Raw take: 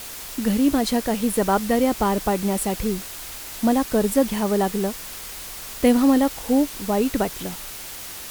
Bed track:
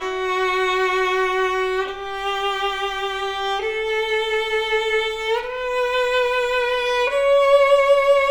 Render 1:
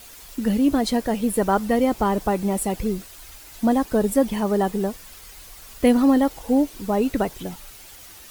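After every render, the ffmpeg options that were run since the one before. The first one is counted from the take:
ffmpeg -i in.wav -af "afftdn=noise_reduction=10:noise_floor=-36" out.wav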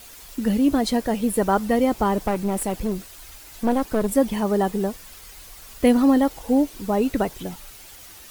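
ffmpeg -i in.wav -filter_complex "[0:a]asettb=1/sr,asplit=3[link_01][link_02][link_03];[link_01]atrim=end=2.234[link_04];[link_02]atrim=start=2.23:end=4.11,asetpts=PTS-STARTPTS,afade=type=in:duration=0.004:curve=qsin,afade=type=out:start_time=1.876:duration=0.004:curve=qsin,aeval=exprs='clip(val(0),-1,0.0473)':channel_layout=same[link_05];[link_03]atrim=start=4.106[link_06];[link_04][link_05]acrossfade=duration=0.004:curve1=hsin:curve2=qsin[link_07];[link_07][link_06]acrossfade=duration=0.004:curve1=qsin:curve2=hsin" out.wav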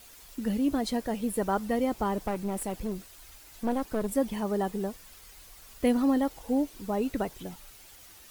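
ffmpeg -i in.wav -af "volume=-8dB" out.wav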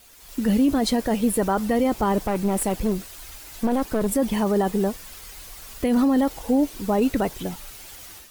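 ffmpeg -i in.wav -af "alimiter=limit=-22.5dB:level=0:latency=1:release=11,dynaudnorm=framelen=190:gausssize=3:maxgain=10dB" out.wav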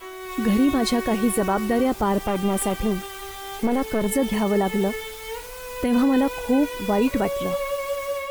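ffmpeg -i in.wav -i bed.wav -filter_complex "[1:a]volume=-12.5dB[link_01];[0:a][link_01]amix=inputs=2:normalize=0" out.wav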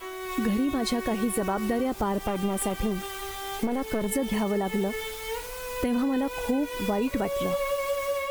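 ffmpeg -i in.wav -af "acompressor=threshold=-23dB:ratio=6" out.wav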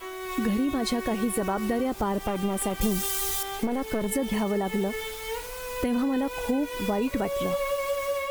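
ffmpeg -i in.wav -filter_complex "[0:a]asettb=1/sr,asplit=3[link_01][link_02][link_03];[link_01]atrim=end=2.814[link_04];[link_02]atrim=start=2.81:end=3.43,asetpts=PTS-STARTPTS,afade=type=in:duration=0.004:curve=qsin,afade=type=out:start_time=0.616:duration=0.004:curve=qsin,bass=frequency=250:gain=4,treble=frequency=4000:gain=14[link_05];[link_03]atrim=start=3.426[link_06];[link_04][link_05]acrossfade=duration=0.004:curve1=hsin:curve2=qsin[link_07];[link_07][link_06]acrossfade=duration=0.004:curve1=qsin:curve2=hsin" out.wav

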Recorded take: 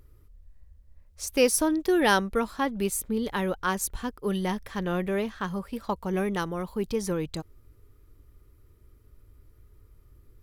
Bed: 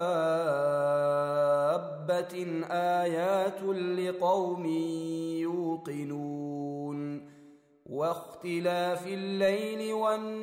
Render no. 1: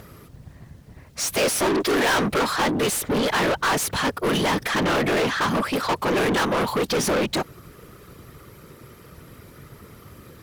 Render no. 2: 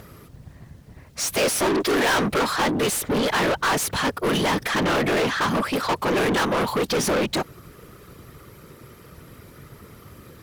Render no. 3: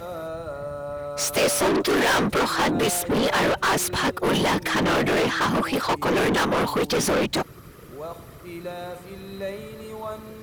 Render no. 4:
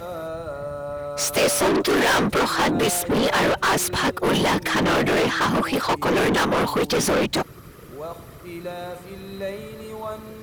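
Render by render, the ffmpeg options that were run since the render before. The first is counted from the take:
ffmpeg -i in.wav -filter_complex "[0:a]afftfilt=real='hypot(re,im)*cos(2*PI*random(0))':imag='hypot(re,im)*sin(2*PI*random(1))':win_size=512:overlap=0.75,asplit=2[link_01][link_02];[link_02]highpass=frequency=720:poles=1,volume=38dB,asoftclip=type=tanh:threshold=-14dB[link_03];[link_01][link_03]amix=inputs=2:normalize=0,lowpass=frequency=5300:poles=1,volume=-6dB" out.wav
ffmpeg -i in.wav -af anull out.wav
ffmpeg -i in.wav -i bed.wav -filter_complex "[1:a]volume=-5.5dB[link_01];[0:a][link_01]amix=inputs=2:normalize=0" out.wav
ffmpeg -i in.wav -af "volume=1.5dB" out.wav

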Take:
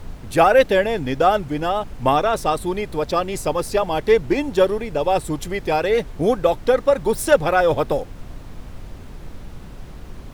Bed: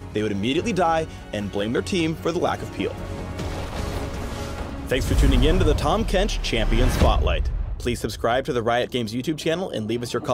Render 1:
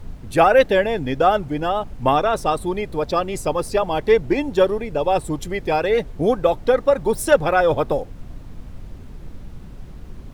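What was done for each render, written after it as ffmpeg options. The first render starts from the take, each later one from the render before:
ffmpeg -i in.wav -af "afftdn=noise_reduction=6:noise_floor=-37" out.wav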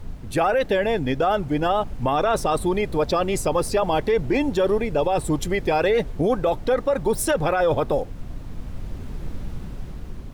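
ffmpeg -i in.wav -af "dynaudnorm=framelen=380:gausssize=7:maxgain=9dB,alimiter=limit=-12.5dB:level=0:latency=1:release=22" out.wav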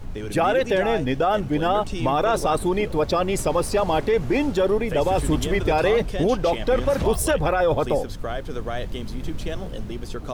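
ffmpeg -i in.wav -i bed.wav -filter_complex "[1:a]volume=-9dB[link_01];[0:a][link_01]amix=inputs=2:normalize=0" out.wav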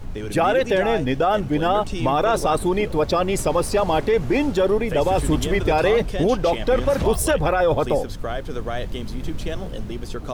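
ffmpeg -i in.wav -af "volume=1.5dB" out.wav

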